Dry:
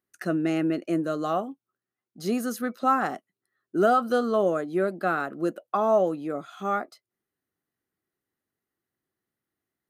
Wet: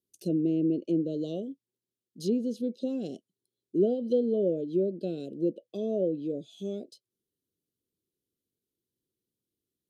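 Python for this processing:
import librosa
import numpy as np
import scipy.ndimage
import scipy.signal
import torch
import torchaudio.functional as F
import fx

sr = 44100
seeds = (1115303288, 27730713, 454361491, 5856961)

y = scipy.signal.sosfilt(scipy.signal.ellip(3, 1.0, 40, [500.0, 3200.0], 'bandstop', fs=sr, output='sos'), x)
y = fx.env_lowpass_down(y, sr, base_hz=1700.0, full_db=-24.0)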